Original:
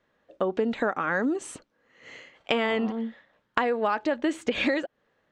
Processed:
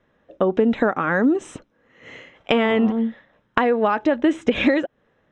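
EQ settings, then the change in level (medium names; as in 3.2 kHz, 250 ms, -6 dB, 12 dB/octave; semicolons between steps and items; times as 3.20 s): Butterworth band-stop 4.5 kHz, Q 6.2; distance through air 78 m; bass shelf 330 Hz +7 dB; +5.0 dB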